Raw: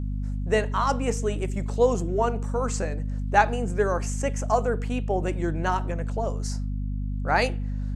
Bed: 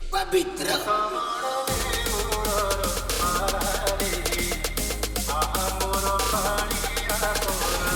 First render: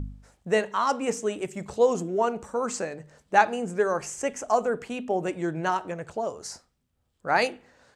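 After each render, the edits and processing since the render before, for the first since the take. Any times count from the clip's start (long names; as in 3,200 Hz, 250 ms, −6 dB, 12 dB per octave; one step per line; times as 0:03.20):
hum removal 50 Hz, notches 5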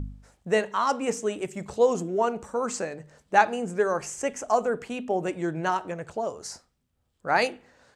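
no processing that can be heard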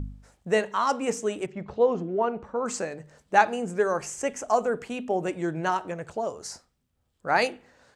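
0:01.46–0:02.66: high-frequency loss of the air 290 metres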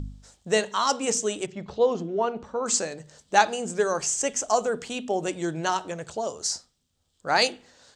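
flat-topped bell 5,100 Hz +11 dB
mains-hum notches 60/120/180/240 Hz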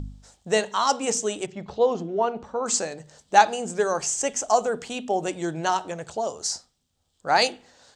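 parametric band 780 Hz +4.5 dB 0.56 octaves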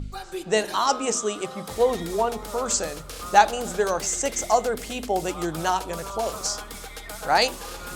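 mix in bed −11.5 dB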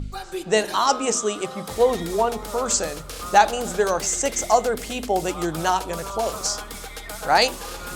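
level +2.5 dB
brickwall limiter −3 dBFS, peak gain reduction 3 dB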